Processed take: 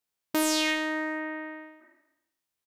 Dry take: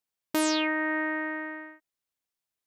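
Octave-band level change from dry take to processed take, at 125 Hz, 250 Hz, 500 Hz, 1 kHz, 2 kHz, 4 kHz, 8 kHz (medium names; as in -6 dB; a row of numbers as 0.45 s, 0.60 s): no reading, -1.0 dB, -0.5 dB, -1.5 dB, -1.5 dB, +3.5 dB, +4.0 dB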